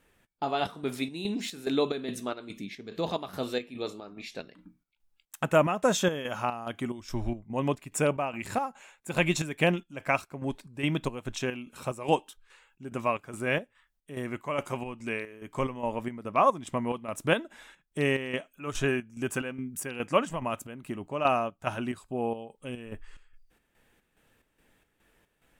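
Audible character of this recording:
chopped level 2.4 Hz, depth 60%, duty 60%
AAC

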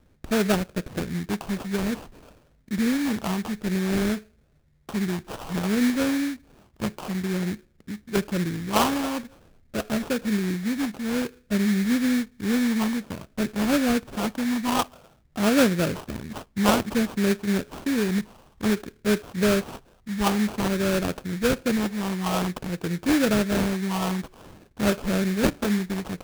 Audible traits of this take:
phaser sweep stages 8, 0.53 Hz, lowest notch 570–1,200 Hz
aliases and images of a low sample rate 2,000 Hz, jitter 20%

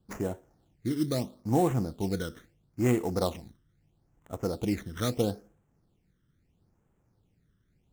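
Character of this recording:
aliases and images of a low sample rate 4,800 Hz, jitter 20%
phaser sweep stages 12, 0.76 Hz, lowest notch 770–4,600 Hz

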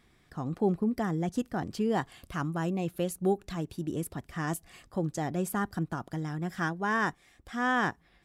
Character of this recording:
background noise floor −65 dBFS
spectral slope −3.5 dB per octave

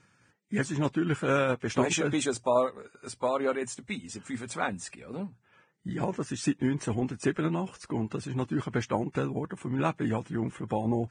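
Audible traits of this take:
tremolo saw down 4.7 Hz, depth 35%
Ogg Vorbis

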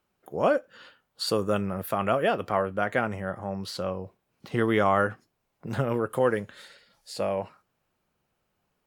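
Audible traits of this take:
background noise floor −78 dBFS
spectral slope −4.5 dB per octave

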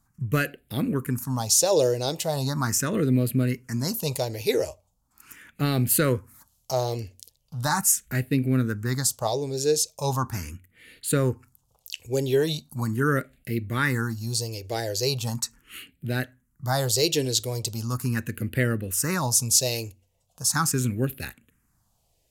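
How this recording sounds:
phaser sweep stages 4, 0.39 Hz, lowest notch 200–1,000 Hz

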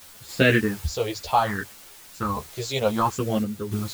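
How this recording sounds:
phaser sweep stages 4, 0.66 Hz, lowest notch 230–1,000 Hz
a quantiser's noise floor 8 bits, dither triangular
sample-and-hold tremolo
a shimmering, thickened sound

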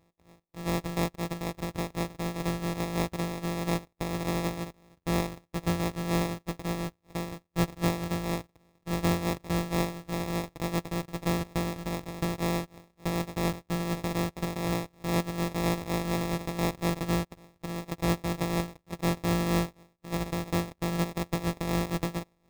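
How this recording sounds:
a buzz of ramps at a fixed pitch in blocks of 256 samples
tremolo triangle 4.1 Hz, depth 55%
aliases and images of a low sample rate 1,500 Hz, jitter 0%

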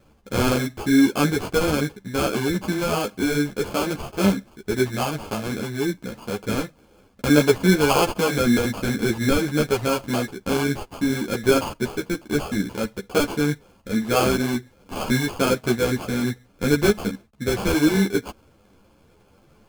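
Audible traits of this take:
aliases and images of a low sample rate 1,900 Hz, jitter 0%
a shimmering, thickened sound

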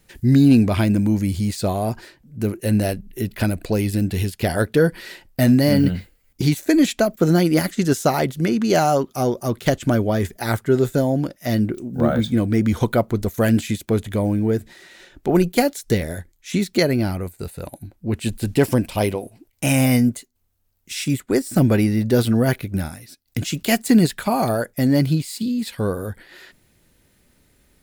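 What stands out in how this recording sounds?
background noise floor −62 dBFS
spectral slope −6.5 dB per octave

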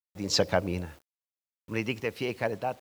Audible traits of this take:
sample-and-hold tremolo 3.5 Hz, depth 70%
a quantiser's noise floor 10 bits, dither none

